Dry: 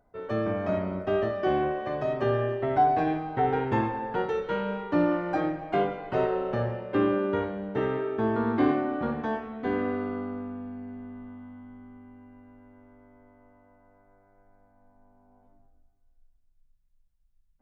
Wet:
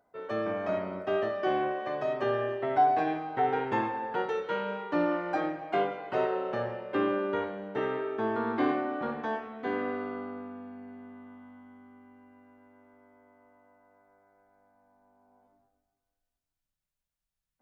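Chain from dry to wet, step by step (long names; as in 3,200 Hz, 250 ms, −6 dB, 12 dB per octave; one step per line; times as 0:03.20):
high-pass filter 440 Hz 6 dB per octave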